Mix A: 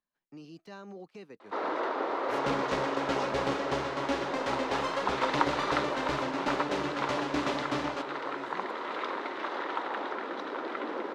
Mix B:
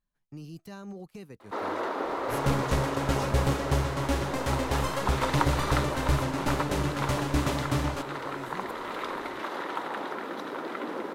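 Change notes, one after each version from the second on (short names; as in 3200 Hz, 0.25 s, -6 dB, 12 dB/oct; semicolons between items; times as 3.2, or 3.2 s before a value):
master: remove three-band isolator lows -22 dB, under 220 Hz, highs -24 dB, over 5900 Hz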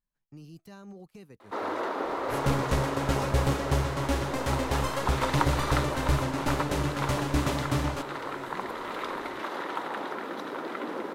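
speech -4.5 dB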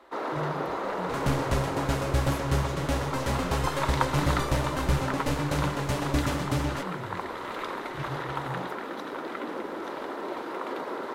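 first sound: entry -1.40 s; second sound: entry -1.20 s; reverb: on, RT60 0.40 s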